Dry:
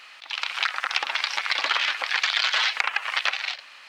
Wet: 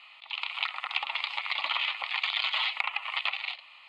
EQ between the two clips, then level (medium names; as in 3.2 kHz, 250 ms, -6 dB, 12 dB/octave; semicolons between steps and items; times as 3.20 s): low-pass 5.3 kHz 12 dB/octave; bass shelf 370 Hz -6 dB; static phaser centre 1.6 kHz, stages 6; -3.0 dB